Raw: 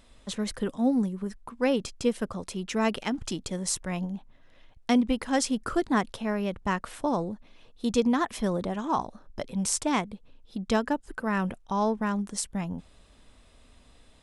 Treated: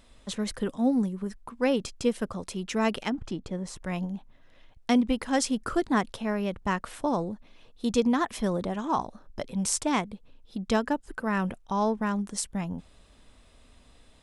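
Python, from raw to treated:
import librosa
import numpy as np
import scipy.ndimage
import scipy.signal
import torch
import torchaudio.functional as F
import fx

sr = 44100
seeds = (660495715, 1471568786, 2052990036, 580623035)

y = fx.lowpass(x, sr, hz=1300.0, slope=6, at=(3.09, 3.79), fade=0.02)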